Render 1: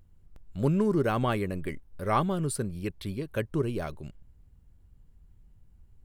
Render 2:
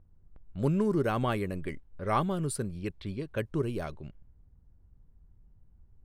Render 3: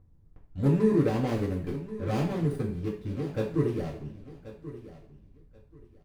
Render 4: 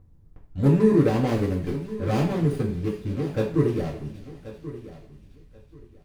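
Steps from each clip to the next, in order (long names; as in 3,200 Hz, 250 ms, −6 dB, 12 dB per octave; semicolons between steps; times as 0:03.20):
low-pass that shuts in the quiet parts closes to 1,200 Hz, open at −26.5 dBFS; level −2 dB
running median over 41 samples; repeating echo 1,083 ms, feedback 21%, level −15 dB; coupled-rooms reverb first 0.43 s, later 2.2 s, from −26 dB, DRR −4 dB; level −2 dB
delay with a high-pass on its return 385 ms, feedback 65%, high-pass 2,900 Hz, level −13 dB; level +5 dB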